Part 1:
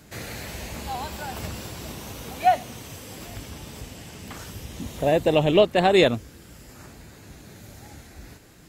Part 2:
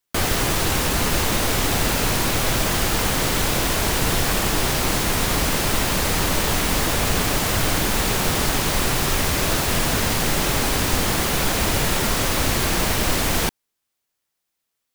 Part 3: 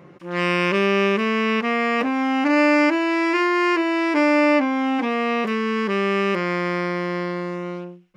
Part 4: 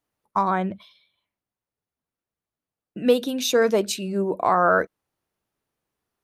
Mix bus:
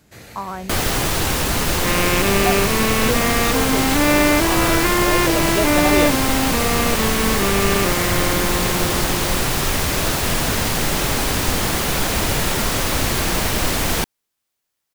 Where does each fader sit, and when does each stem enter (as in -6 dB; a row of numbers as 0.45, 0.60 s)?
-5.0, +1.0, 0.0, -7.0 dB; 0.00, 0.55, 1.50, 0.00 s